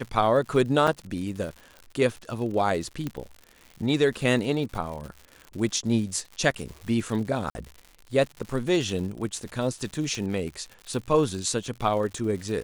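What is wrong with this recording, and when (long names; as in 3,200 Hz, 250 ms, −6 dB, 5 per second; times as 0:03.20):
surface crackle 130 per second −35 dBFS
0:00.87–0:00.88: drop-out 5.4 ms
0:03.07: click −17 dBFS
0:07.50–0:07.55: drop-out 50 ms
0:10.15: click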